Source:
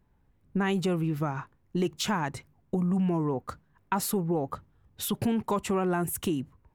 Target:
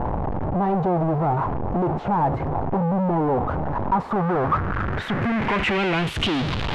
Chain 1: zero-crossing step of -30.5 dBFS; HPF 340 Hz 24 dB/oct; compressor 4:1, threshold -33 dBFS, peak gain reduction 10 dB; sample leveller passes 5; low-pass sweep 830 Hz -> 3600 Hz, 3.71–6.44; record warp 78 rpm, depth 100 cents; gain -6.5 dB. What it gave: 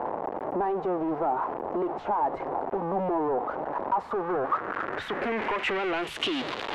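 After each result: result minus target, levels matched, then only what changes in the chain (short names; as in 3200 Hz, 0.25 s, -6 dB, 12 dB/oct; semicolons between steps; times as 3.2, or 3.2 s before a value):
compressor: peak gain reduction +10 dB; 250 Hz band -3.0 dB
remove: compressor 4:1, threshold -33 dBFS, peak gain reduction 10 dB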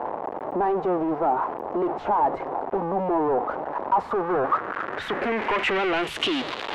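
250 Hz band -3.5 dB
remove: HPF 340 Hz 24 dB/oct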